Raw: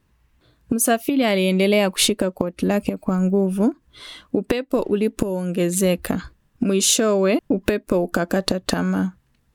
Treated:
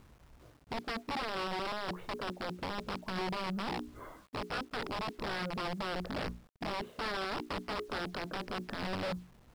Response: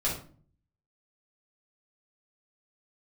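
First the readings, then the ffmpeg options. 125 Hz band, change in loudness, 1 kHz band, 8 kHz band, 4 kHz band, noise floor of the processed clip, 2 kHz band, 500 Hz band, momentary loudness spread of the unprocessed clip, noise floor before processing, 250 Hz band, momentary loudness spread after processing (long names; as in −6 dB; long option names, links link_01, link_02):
−18.5 dB, −17.5 dB, −7.0 dB, −32.0 dB, −14.5 dB, −61 dBFS, −10.5 dB, −20.0 dB, 9 LU, −64 dBFS, −21.0 dB, 6 LU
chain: -af "lowpass=frequency=1200:width=0.5412,lowpass=frequency=1200:width=1.3066,bandreject=frequency=60:width_type=h:width=6,bandreject=frequency=120:width_type=h:width=6,bandreject=frequency=180:width_type=h:width=6,bandreject=frequency=240:width_type=h:width=6,bandreject=frequency=300:width_type=h:width=6,bandreject=frequency=360:width_type=h:width=6,bandreject=frequency=420:width_type=h:width=6,areverse,acompressor=threshold=-32dB:ratio=8,areverse,alimiter=level_in=8dB:limit=-24dB:level=0:latency=1:release=13,volume=-8dB,acompressor=mode=upward:threshold=-59dB:ratio=2.5,aresample=11025,aeval=exprs='(mod(50.1*val(0)+1,2)-1)/50.1':channel_layout=same,aresample=44100,acrusher=bits=10:mix=0:aa=0.000001,asoftclip=type=tanh:threshold=-32.5dB,volume=3.5dB"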